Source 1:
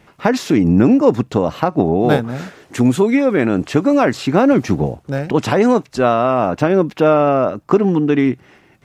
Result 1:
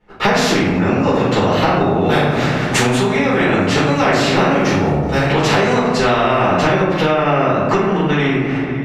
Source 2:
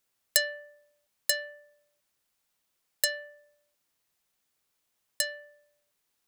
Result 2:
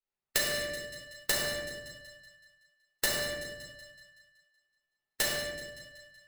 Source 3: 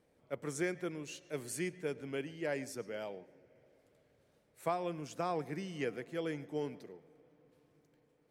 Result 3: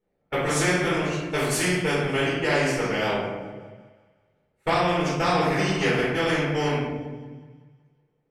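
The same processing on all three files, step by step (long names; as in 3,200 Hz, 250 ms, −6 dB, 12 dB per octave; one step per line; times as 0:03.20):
noise gate −43 dBFS, range −36 dB
feedback echo with a high-pass in the loop 188 ms, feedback 50%, high-pass 420 Hz, level −23.5 dB
rectangular room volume 180 cubic metres, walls mixed, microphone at 4.3 metres
downward compressor 4 to 1, threshold −17 dBFS
low-pass filter 1,800 Hz 6 dB per octave
notch filter 970 Hz, Q 22
every bin compressed towards the loudest bin 2 to 1
level +3 dB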